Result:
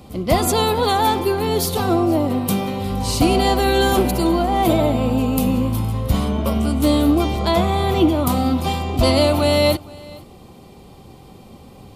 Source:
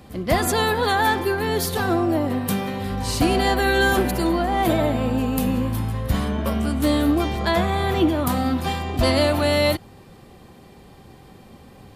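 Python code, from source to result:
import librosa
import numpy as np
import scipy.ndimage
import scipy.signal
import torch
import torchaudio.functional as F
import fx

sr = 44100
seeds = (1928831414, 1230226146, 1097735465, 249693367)

p1 = fx.peak_eq(x, sr, hz=1700.0, db=-14.5, octaves=0.33)
p2 = p1 + fx.echo_single(p1, sr, ms=466, db=-22.5, dry=0)
y = p2 * librosa.db_to_amplitude(3.5)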